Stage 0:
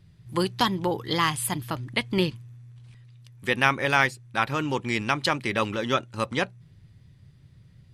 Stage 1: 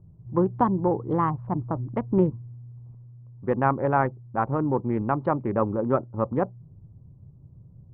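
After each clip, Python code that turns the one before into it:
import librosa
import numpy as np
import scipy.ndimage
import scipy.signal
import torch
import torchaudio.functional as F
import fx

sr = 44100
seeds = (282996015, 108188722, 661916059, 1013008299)

y = fx.wiener(x, sr, points=25)
y = scipy.signal.sosfilt(scipy.signal.butter(4, 1100.0, 'lowpass', fs=sr, output='sos'), y)
y = y * librosa.db_to_amplitude(4.0)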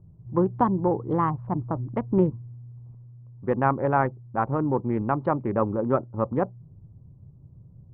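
y = x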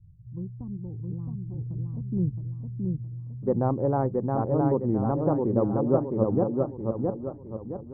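y = fx.filter_sweep_lowpass(x, sr, from_hz=100.0, to_hz=550.0, start_s=1.88, end_s=3.22, q=0.88)
y = fx.echo_feedback(y, sr, ms=666, feedback_pct=41, wet_db=-3)
y = fx.record_warp(y, sr, rpm=45.0, depth_cents=100.0)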